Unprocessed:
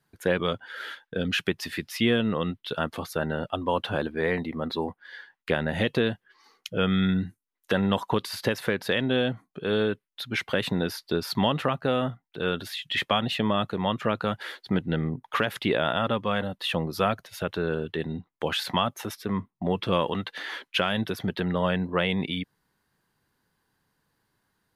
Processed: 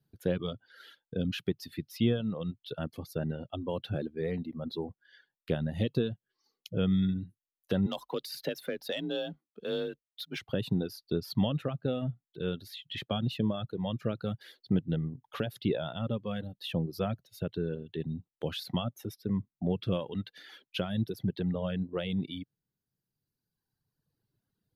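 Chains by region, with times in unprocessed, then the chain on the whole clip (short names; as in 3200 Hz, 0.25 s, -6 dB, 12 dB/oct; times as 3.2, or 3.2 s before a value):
7.86–10.39 HPF 560 Hz 6 dB/oct + sample leveller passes 1 + frequency shift +37 Hz
whole clip: reverb removal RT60 1.9 s; graphic EQ 125/1000/2000/8000 Hz +7/-11/-11/-10 dB; gain -3.5 dB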